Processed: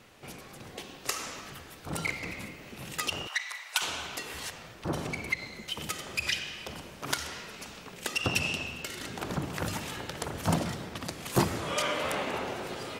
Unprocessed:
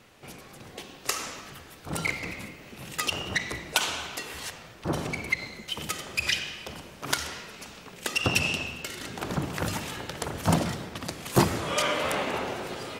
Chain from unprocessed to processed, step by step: 3.27–3.82 HPF 900 Hz 24 dB/oct; in parallel at -2.5 dB: compressor, threshold -37 dBFS, peak gain reduction 20 dB; on the sum: gain -5 dB

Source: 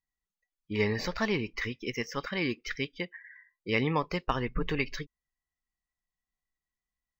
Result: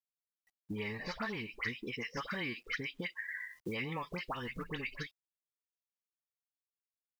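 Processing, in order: compressor 5:1, threshold -40 dBFS, peak gain reduction 16 dB; LPF 3700 Hz 12 dB/oct; low shelf 97 Hz -11.5 dB; dispersion highs, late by 75 ms, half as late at 1600 Hz; dynamic EQ 390 Hz, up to -6 dB, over -55 dBFS, Q 1.1; companded quantiser 8-bit; 2.17–4.64 three-band squash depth 70%; gain +6.5 dB

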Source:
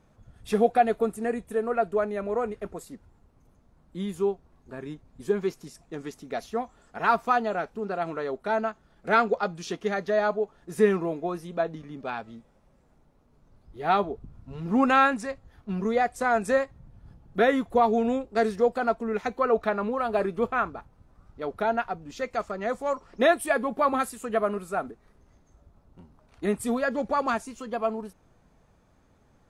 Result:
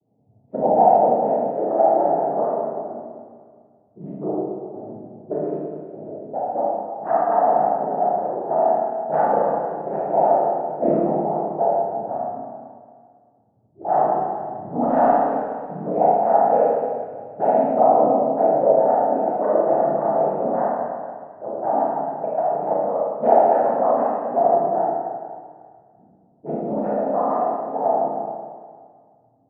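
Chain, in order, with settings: noise vocoder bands 12; in parallel at -5 dB: hard clip -18.5 dBFS, distortion -11 dB; on the sum: low-pass opened by the level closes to 370 Hz, open at -16.5 dBFS; synth low-pass 720 Hz, resonance Q 4.9; Schroeder reverb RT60 1.9 s, combs from 26 ms, DRR -7 dB; gain -11 dB

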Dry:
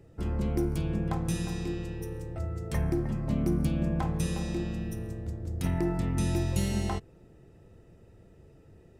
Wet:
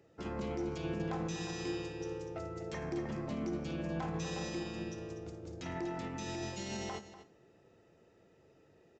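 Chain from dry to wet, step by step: HPF 180 Hz 6 dB/oct; low shelf 230 Hz -10.5 dB; limiter -33 dBFS, peak gain reduction 10.5 dB; echo 0.243 s -10 dB; on a send at -14 dB: reverb RT60 0.75 s, pre-delay 37 ms; on the sum: downsampling 16000 Hz; upward expander 1.5:1, over -49 dBFS; gain +3.5 dB

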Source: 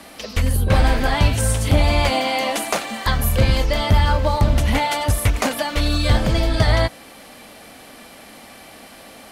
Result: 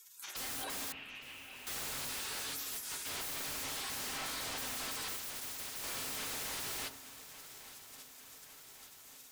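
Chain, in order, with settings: spectral gate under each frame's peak -25 dB weak; HPF 130 Hz 12 dB/oct; low shelf 350 Hz -9.5 dB; wavefolder -38.5 dBFS; 0.92–1.67 ladder low-pass 2900 Hz, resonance 75%; swung echo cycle 1.148 s, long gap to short 3:1, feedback 64%, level -17 dB; reverb RT60 0.75 s, pre-delay 4 ms, DRR 7 dB; 5.16–5.84 spectral compressor 4:1; gain +2.5 dB

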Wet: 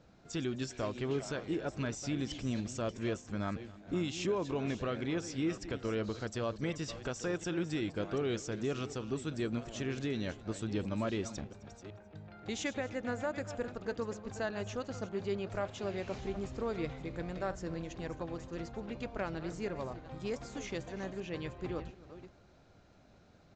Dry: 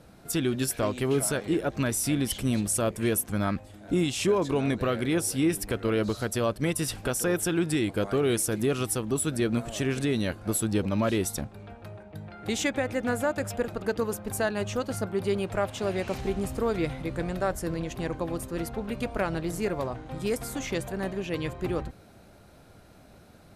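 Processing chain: reverse delay 0.372 s, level -13 dB; echo 0.262 s -21 dB; downsampling 16000 Hz; gain -9 dB

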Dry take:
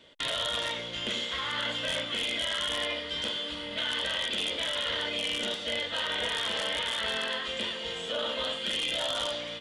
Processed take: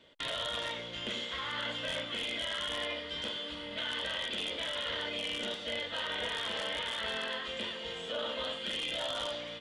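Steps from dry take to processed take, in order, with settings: high shelf 4600 Hz -6 dB; gain -3.5 dB

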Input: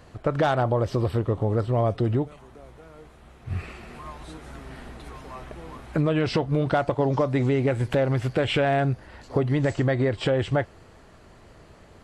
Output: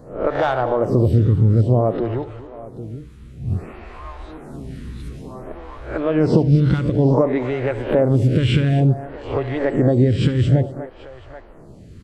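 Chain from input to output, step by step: spectral swells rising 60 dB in 0.42 s; low shelf 470 Hz +11 dB; tapped delay 71/246/784 ms -16/-15/-18.5 dB; photocell phaser 0.56 Hz; gain +1 dB

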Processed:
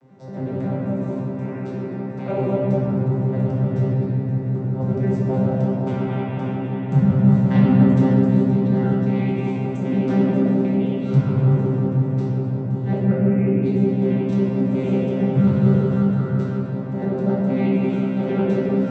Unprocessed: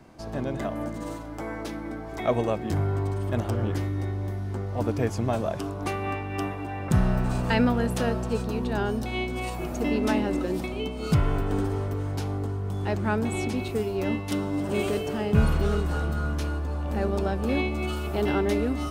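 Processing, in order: arpeggiated vocoder bare fifth, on C3, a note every 91 ms; 13.01–13.63 EQ curve 180 Hz 0 dB, 440 Hz +7 dB, 940 Hz -14 dB, 1600 Hz -2 dB, 2500 Hz -1 dB, 3900 Hz -22 dB; shoebox room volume 150 m³, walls hard, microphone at 0.91 m

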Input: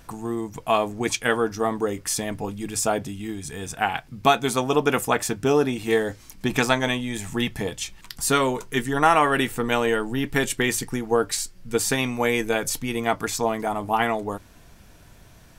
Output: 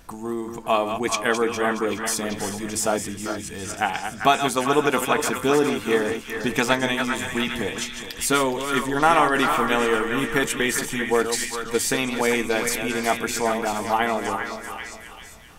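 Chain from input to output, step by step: regenerating reverse delay 0.208 s, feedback 56%, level -8 dB; bell 120 Hz -9.5 dB 0.39 oct; delay with a stepping band-pass 0.393 s, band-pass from 1500 Hz, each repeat 0.7 oct, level -4 dB

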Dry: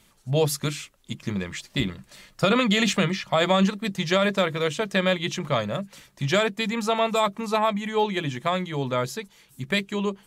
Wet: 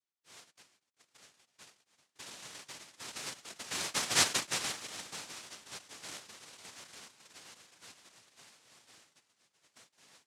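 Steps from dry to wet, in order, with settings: Doppler pass-by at 4.22, 34 m/s, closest 3 m; delay with a stepping band-pass 0.388 s, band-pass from 3000 Hz, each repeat -0.7 oct, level -7.5 dB; noise vocoder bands 1; gain -1.5 dB

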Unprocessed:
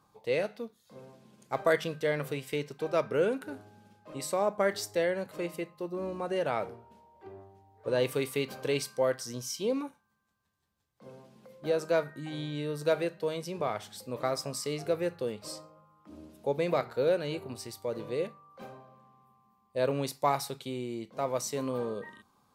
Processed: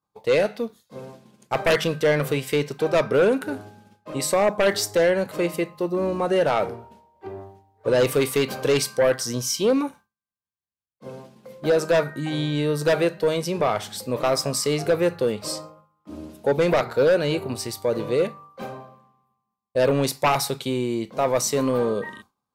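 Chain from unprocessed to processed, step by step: expander -51 dBFS; sine folder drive 8 dB, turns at -13.5 dBFS

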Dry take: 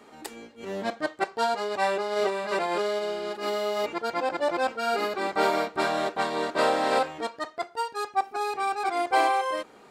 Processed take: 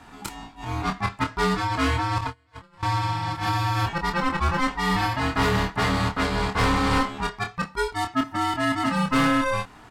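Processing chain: 2.18–2.83 gate -22 dBFS, range -36 dB; in parallel at -4 dB: wavefolder -23 dBFS; on the sum: ring modulator 510 Hz; doubler 26 ms -6.5 dB; gain +2.5 dB

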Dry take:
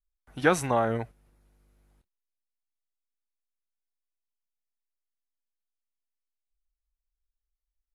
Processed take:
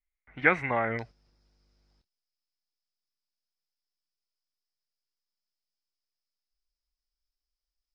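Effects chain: synth low-pass 2100 Hz, resonance Q 11, from 0.99 s 5100 Hz; gain -5 dB

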